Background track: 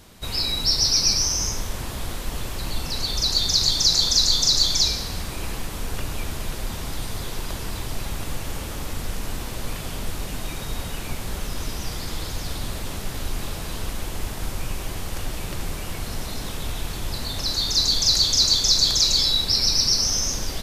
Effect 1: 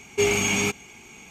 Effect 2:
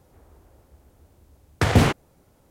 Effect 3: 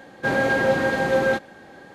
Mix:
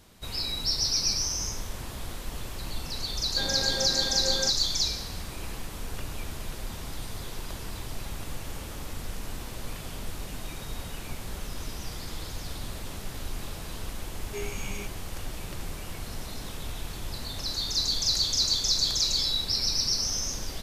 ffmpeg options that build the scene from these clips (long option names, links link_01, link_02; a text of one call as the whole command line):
ffmpeg -i bed.wav -i cue0.wav -i cue1.wav -i cue2.wav -filter_complex "[0:a]volume=-7dB[link_01];[1:a]flanger=delay=15:depth=2.1:speed=1.6[link_02];[3:a]atrim=end=1.94,asetpts=PTS-STARTPTS,volume=-13.5dB,afade=type=in:duration=0.004:curve=hsin,afade=type=out:start_time=1.936:duration=0.004:curve=hsin,adelay=138033S[link_03];[link_02]atrim=end=1.3,asetpts=PTS-STARTPTS,volume=-14dB,afade=type=in:duration=0.004:curve=hsin,afade=type=out:start_time=1.296:duration=0.004:curve=hsin,adelay=14150[link_04];[link_01][link_03][link_04]amix=inputs=3:normalize=0" out.wav